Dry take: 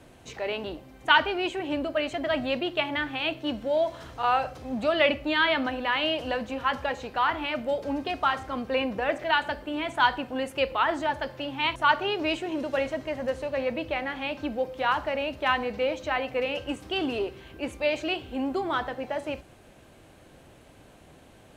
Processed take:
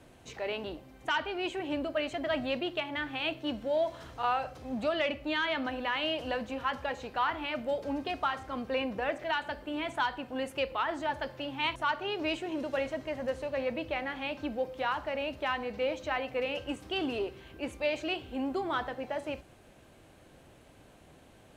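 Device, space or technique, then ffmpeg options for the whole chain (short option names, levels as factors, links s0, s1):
soft clipper into limiter: -af "asoftclip=type=tanh:threshold=0.355,alimiter=limit=0.15:level=0:latency=1:release=370,volume=0.631"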